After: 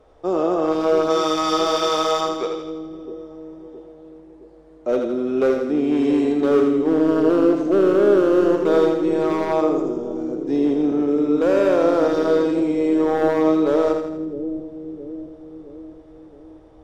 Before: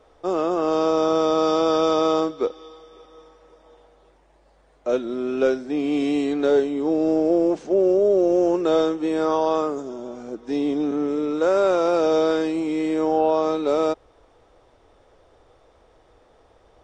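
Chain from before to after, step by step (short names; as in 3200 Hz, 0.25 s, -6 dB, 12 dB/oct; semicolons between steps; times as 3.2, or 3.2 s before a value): tilt shelf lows +4 dB, about 790 Hz, from 1.09 s lows -6.5 dB, from 2.61 s lows +5 dB; hard clip -13.5 dBFS, distortion -15 dB; split-band echo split 410 Hz, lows 0.666 s, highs 82 ms, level -5 dB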